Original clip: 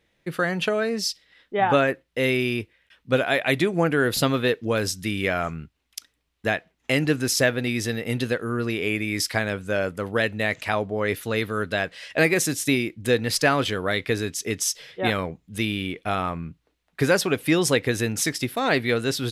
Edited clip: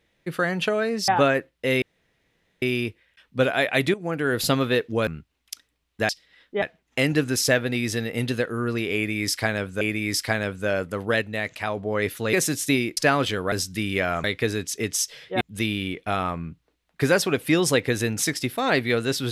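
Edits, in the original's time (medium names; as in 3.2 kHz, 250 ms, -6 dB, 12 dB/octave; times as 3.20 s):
1.08–1.61 s: move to 6.54 s
2.35 s: insert room tone 0.80 s
3.67–4.17 s: fade in, from -13.5 dB
4.80–5.52 s: move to 13.91 s
8.87–9.73 s: loop, 2 plays
10.28–10.83 s: gain -3.5 dB
11.39–12.32 s: delete
12.96–13.36 s: delete
15.08–15.40 s: delete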